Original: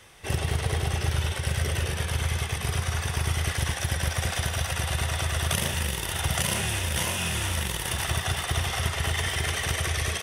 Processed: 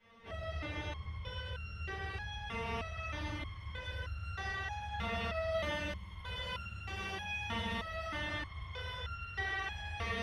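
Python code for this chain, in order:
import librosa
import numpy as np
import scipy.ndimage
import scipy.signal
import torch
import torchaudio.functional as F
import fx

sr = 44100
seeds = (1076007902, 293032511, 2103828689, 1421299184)

y = fx.air_absorb(x, sr, metres=300.0)
y = fx.rev_fdn(y, sr, rt60_s=1.4, lf_ratio=1.25, hf_ratio=0.9, size_ms=31.0, drr_db=-9.5)
y = fx.resonator_held(y, sr, hz=3.2, low_hz=230.0, high_hz=1400.0)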